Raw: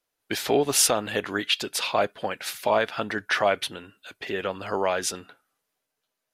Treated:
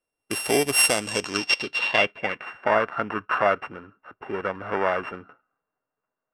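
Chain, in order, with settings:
samples sorted by size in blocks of 16 samples
low-pass filter sweep 11,000 Hz → 1,400 Hz, 0:00.78–0:02.70
one half of a high-frequency compander decoder only

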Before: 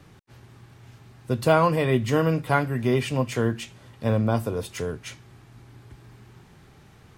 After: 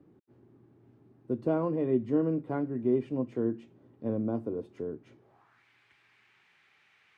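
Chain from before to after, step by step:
band-pass filter sweep 310 Hz → 2,300 Hz, 0:05.12–0:05.65

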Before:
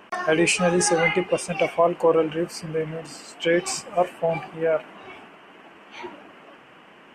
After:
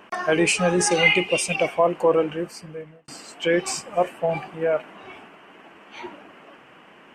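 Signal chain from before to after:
0:00.91–0:01.56: high shelf with overshoot 2,000 Hz +6.5 dB, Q 3
0:02.18–0:03.08: fade out

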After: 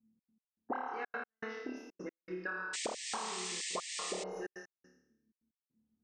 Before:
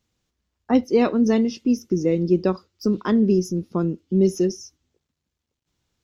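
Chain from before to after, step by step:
envelope filter 220–1,600 Hz, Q 21, up, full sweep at −17 dBFS
flutter between parallel walls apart 4.7 metres, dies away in 0.74 s
convolution reverb, pre-delay 67 ms, DRR 6 dB
gate pattern "xx.x..xxx" 158 BPM −60 dB
sound drawn into the spectrogram noise, 0:02.73–0:04.24, 1,700–8,900 Hz −50 dBFS
downward compressor 6 to 1, threshold −49 dBFS, peak gain reduction 14 dB
level +13 dB

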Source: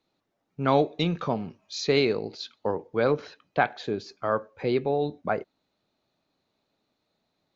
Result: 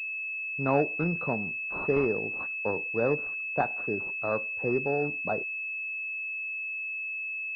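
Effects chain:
switching amplifier with a slow clock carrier 2,600 Hz
level −3 dB

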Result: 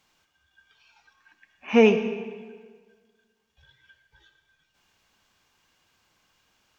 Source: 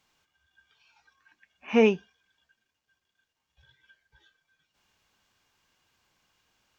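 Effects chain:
mains-hum notches 60/120 Hz
on a send: convolution reverb RT60 1.6 s, pre-delay 30 ms, DRR 9 dB
on the sum: level +3.5 dB

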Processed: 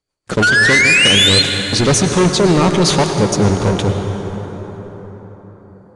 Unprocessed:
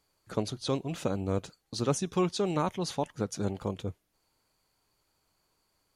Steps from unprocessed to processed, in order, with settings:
sound drawn into the spectrogram rise, 0:00.42–0:01.42, 1,400–4,300 Hz −27 dBFS
rotating-speaker cabinet horn 6.3 Hz, later 1 Hz, at 0:01.55
leveller curve on the samples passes 5
on a send at −4.5 dB: convolution reverb RT60 5.0 s, pre-delay 93 ms
on the sum: downsampling to 22,050 Hz
level +6.5 dB

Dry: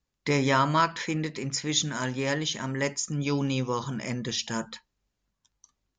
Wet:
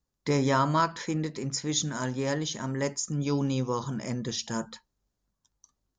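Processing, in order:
parametric band 2,500 Hz −9 dB 1.2 octaves

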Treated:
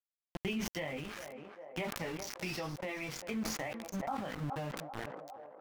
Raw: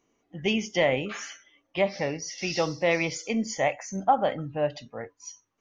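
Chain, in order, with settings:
multi-voice chorus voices 2, 0.53 Hz, delay 19 ms, depth 2.3 ms
centre clipping without the shift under −35 dBFS
feedback echo with a band-pass in the loop 401 ms, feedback 54%, band-pass 680 Hz, level −21 dB
downward compressor 6 to 1, threshold −40 dBFS, peak gain reduction 18.5 dB
dynamic equaliser 550 Hz, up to −8 dB, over −56 dBFS, Q 1.3
pitch vibrato 1.1 Hz 28 cents
high-shelf EQ 3,100 Hz −11 dB
level that may fall only so fast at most 34 dB per second
level +7 dB

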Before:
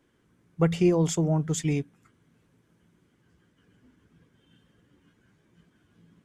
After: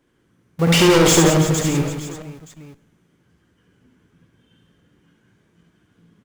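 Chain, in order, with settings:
0:00.67–0:01.30: mid-hump overdrive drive 35 dB, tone 7,200 Hz, clips at −12 dBFS
in parallel at −4.5 dB: comparator with hysteresis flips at −38 dBFS
on the sum: reverse bouncing-ball delay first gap 70 ms, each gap 1.5×, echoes 5
four-comb reverb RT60 0.89 s, combs from 32 ms, DRR 17.5 dB
level +2 dB

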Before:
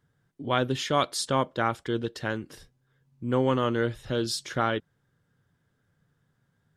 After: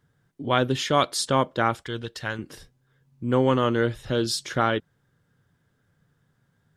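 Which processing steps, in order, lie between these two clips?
0:01.82–0:02.39: parametric band 310 Hz −9.5 dB 2.2 octaves
level +3.5 dB

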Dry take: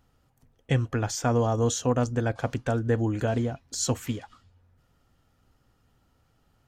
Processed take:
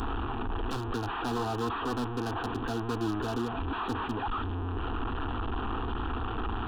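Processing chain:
linear delta modulator 16 kbit/s, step −22.5 dBFS
wave folding −20.5 dBFS
phaser with its sweep stopped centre 570 Hz, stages 6

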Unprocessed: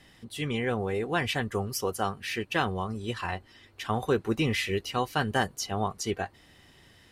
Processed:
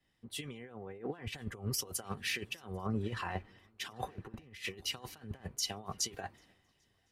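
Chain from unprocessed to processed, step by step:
compressor whose output falls as the input rises −34 dBFS, ratio −0.5
on a send: feedback echo with a long and a short gap by turns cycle 1,061 ms, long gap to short 3 to 1, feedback 46%, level −22 dB
on the sum: multiband upward and downward expander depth 100%
level −6.5 dB

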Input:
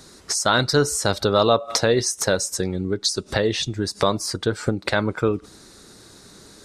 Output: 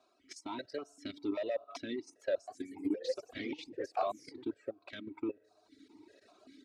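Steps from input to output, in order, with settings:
camcorder AGC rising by 6.5 dB per second
comb filter 3.1 ms, depth 72%
convolution reverb RT60 4.0 s, pre-delay 4 ms, DRR 16 dB
0:02.33–0:04.54: delay with pitch and tempo change per echo 145 ms, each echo +2 semitones, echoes 3
hard clipping −11.5 dBFS, distortion −15 dB
output level in coarse steps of 10 dB
reverb reduction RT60 1.2 s
formant filter that steps through the vowels 5.1 Hz
level −3.5 dB

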